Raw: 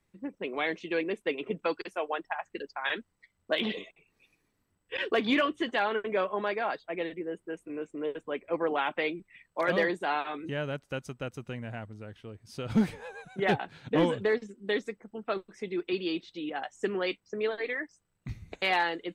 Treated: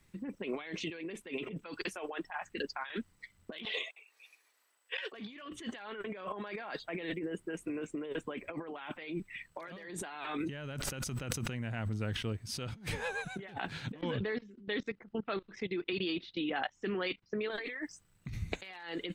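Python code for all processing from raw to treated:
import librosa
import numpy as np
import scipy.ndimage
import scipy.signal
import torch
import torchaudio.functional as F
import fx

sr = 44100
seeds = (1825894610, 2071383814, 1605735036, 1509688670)

y = fx.chain(x, sr, fx.highpass(hz=530.0, slope=24),
    fx.transient(attack_db=-6, sustain_db=-2), at=(3.65, 5.13))
y = fx.chain(y, sr, fx.quant_float(bits=8),
    fx.sustainer(db_per_s=60.0), at=(9.74, 12.33))
y = fx.chain(y, sr, fx.lowpass(hz=4700.0, slope=24),
    fx.level_steps(step_db=20), at=(14.01, 17.5))
y = fx.peak_eq(y, sr, hz=570.0, db=-6.5, octaves=2.2)
y = fx.over_compress(y, sr, threshold_db=-44.0, ratio=-1.0)
y = y * librosa.db_to_amplitude(4.0)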